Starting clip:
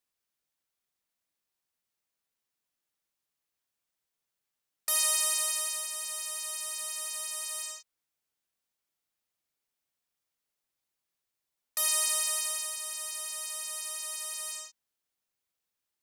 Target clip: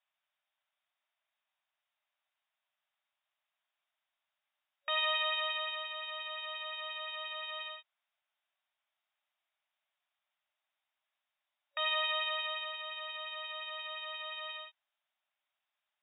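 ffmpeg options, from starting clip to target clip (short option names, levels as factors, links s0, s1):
-af "afftfilt=real='re*between(b*sr/4096,570,3800)':imag='im*between(b*sr/4096,570,3800)':win_size=4096:overlap=0.75,volume=1.68"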